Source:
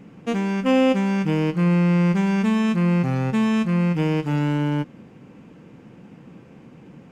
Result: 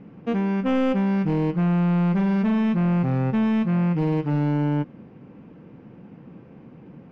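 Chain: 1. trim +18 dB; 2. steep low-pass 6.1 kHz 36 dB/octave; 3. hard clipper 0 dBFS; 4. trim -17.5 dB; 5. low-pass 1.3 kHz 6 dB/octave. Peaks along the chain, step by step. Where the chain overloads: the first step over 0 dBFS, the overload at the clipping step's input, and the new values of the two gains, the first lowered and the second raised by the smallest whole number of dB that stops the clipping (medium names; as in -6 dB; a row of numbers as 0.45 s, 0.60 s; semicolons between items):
+9.5 dBFS, +9.5 dBFS, 0.0 dBFS, -17.5 dBFS, -17.5 dBFS; step 1, 9.5 dB; step 1 +8 dB, step 4 -7.5 dB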